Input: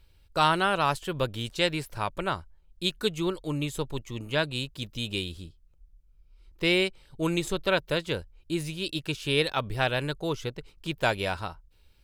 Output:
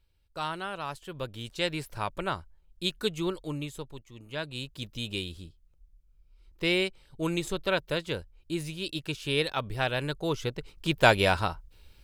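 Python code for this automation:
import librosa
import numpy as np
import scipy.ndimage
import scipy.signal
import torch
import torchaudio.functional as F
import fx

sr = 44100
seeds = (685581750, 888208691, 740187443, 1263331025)

y = fx.gain(x, sr, db=fx.line((0.88, -11.0), (1.86, -2.0), (3.4, -2.0), (4.11, -13.0), (4.76, -2.5), (9.88, -2.5), (11.11, 6.0)))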